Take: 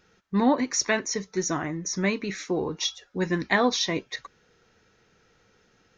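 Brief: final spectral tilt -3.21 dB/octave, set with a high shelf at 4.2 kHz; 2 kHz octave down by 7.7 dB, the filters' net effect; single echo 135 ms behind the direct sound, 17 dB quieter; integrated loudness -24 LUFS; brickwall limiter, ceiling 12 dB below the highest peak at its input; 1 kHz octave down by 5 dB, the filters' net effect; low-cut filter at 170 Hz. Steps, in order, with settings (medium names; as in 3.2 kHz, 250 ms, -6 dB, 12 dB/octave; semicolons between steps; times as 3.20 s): high-pass 170 Hz; peaking EQ 1 kHz -5 dB; peaking EQ 2 kHz -8.5 dB; treble shelf 4.2 kHz +5 dB; peak limiter -19.5 dBFS; delay 135 ms -17 dB; trim +6.5 dB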